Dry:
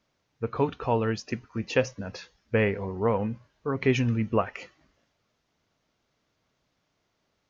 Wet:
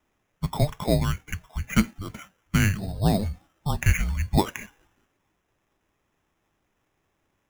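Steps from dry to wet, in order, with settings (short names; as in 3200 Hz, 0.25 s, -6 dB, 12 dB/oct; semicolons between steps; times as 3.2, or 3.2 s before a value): mistuned SSB -300 Hz 200–2900 Hz; 0.99–2.89 dynamic EQ 700 Hz, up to -4 dB, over -47 dBFS, Q 1.4; sample-and-hold 10×; gain +4 dB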